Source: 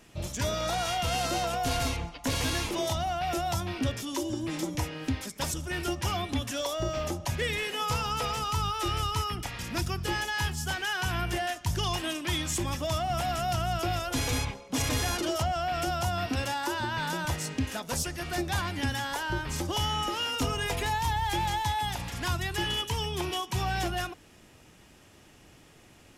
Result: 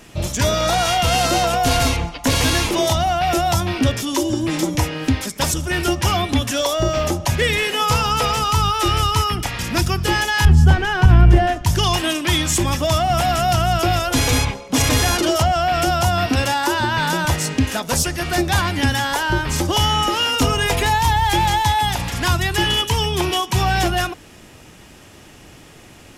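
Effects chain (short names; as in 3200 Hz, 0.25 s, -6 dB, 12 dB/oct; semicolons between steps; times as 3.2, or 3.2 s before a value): 10.45–11.65 tilt -4 dB/oct; maximiser +13 dB; gain -1 dB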